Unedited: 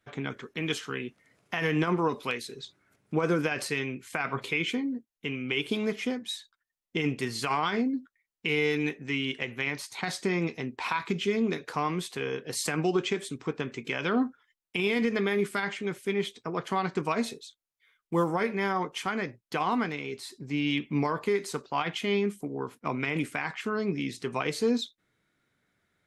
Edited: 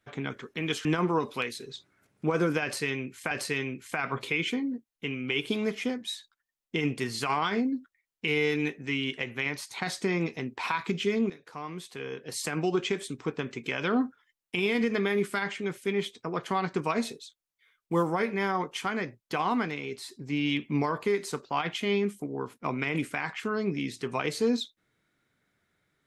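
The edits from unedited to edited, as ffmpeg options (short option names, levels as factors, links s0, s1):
-filter_complex "[0:a]asplit=4[s0][s1][s2][s3];[s0]atrim=end=0.852[s4];[s1]atrim=start=1.738:end=4.202[s5];[s2]atrim=start=3.518:end=11.51,asetpts=PTS-STARTPTS,afade=t=out:st=7.988:d=0.004:c=hsin:silence=0.16788[s6];[s3]atrim=start=11.51,asetpts=PTS-STARTPTS,afade=t=in:d=1.62:silence=0.16788[s7];[s4][s5]acrossfade=d=0.004:c1=hsin:c2=hsin[s8];[s6][s7]concat=n=2:v=0:a=1[s9];[s8][s9]acrossfade=d=0.004:c1=hsin:c2=hsin"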